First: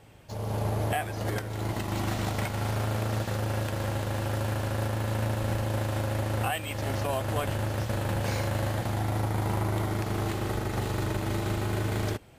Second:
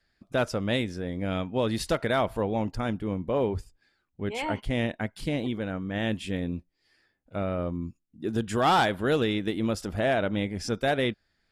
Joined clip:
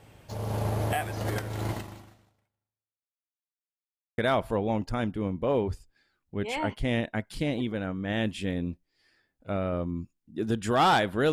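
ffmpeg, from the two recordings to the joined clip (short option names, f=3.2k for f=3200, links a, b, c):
-filter_complex "[0:a]apad=whole_dur=11.32,atrim=end=11.32,asplit=2[a][b];[a]atrim=end=3.22,asetpts=PTS-STARTPTS,afade=t=out:st=1.72:d=1.5:c=exp[c];[b]atrim=start=3.22:end=4.18,asetpts=PTS-STARTPTS,volume=0[d];[1:a]atrim=start=2.04:end=9.18,asetpts=PTS-STARTPTS,afade=t=in:d=0.004:c=hsin[e];[c][d][e]concat=n=3:v=0:a=1"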